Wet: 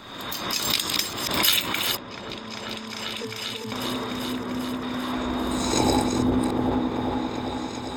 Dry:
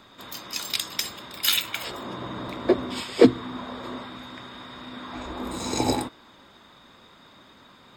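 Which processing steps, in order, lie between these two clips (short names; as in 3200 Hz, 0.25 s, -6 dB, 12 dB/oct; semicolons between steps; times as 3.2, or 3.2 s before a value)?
reverse delay 0.283 s, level -7 dB; in parallel at +2.5 dB: compressor, threshold -38 dBFS, peak gain reduction 26.5 dB; 1.97–3.72 on the sum: octave resonator A, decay 0.71 s; 4.32–4.83 air absorption 420 m; repeats that get brighter 0.395 s, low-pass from 400 Hz, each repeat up 1 oct, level 0 dB; backwards sustainer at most 52 dB/s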